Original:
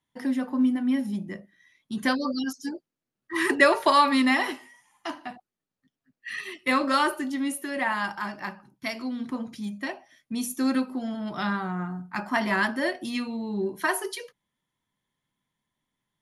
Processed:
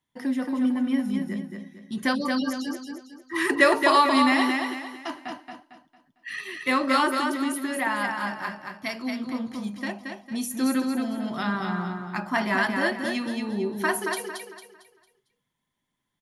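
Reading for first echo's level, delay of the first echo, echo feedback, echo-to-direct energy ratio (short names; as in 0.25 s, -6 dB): -4.5 dB, 0.226 s, 36%, -4.0 dB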